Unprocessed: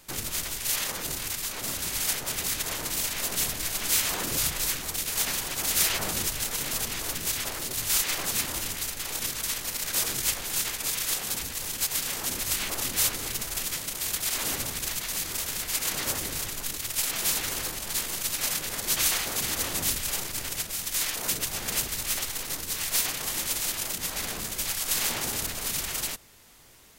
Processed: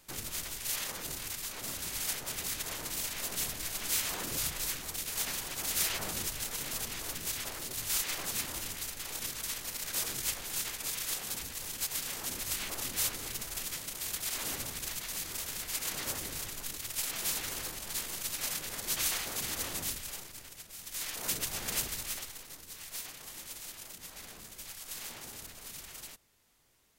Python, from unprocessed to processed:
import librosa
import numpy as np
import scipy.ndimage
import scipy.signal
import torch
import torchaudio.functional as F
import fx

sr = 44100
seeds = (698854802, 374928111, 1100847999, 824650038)

y = fx.gain(x, sr, db=fx.line((19.72, -7.0), (20.58, -17.5), (21.31, -5.0), (21.88, -5.0), (22.49, -15.5)))